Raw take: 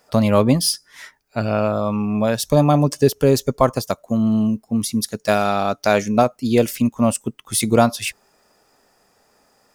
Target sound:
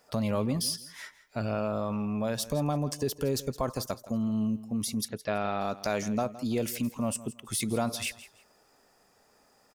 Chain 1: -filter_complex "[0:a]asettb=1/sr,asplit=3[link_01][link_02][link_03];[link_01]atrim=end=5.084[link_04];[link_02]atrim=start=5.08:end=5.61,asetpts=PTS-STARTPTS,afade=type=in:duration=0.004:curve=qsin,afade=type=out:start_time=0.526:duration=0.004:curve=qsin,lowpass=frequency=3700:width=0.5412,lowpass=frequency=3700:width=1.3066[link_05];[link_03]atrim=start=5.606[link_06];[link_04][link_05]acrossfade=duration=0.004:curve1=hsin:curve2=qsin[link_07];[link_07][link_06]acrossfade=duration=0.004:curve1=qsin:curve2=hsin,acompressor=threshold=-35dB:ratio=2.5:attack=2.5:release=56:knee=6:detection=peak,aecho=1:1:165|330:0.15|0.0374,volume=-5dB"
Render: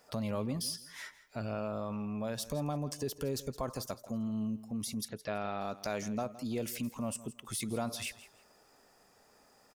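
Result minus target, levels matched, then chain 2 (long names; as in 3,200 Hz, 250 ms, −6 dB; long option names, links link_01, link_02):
downward compressor: peak gain reduction +6.5 dB
-filter_complex "[0:a]asettb=1/sr,asplit=3[link_01][link_02][link_03];[link_01]atrim=end=5.084[link_04];[link_02]atrim=start=5.08:end=5.61,asetpts=PTS-STARTPTS,afade=type=in:duration=0.004:curve=qsin,afade=type=out:start_time=0.526:duration=0.004:curve=qsin,lowpass=frequency=3700:width=0.5412,lowpass=frequency=3700:width=1.3066[link_05];[link_03]atrim=start=5.606[link_06];[link_04][link_05]acrossfade=duration=0.004:curve1=hsin:curve2=qsin[link_07];[link_07][link_06]acrossfade=duration=0.004:curve1=qsin:curve2=hsin,acompressor=threshold=-24.5dB:ratio=2.5:attack=2.5:release=56:knee=6:detection=peak,aecho=1:1:165|330:0.15|0.0374,volume=-5dB"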